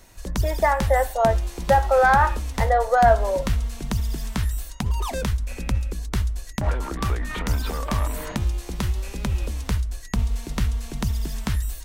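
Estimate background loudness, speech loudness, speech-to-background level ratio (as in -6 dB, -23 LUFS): -27.5 LUFS, -21.0 LUFS, 6.5 dB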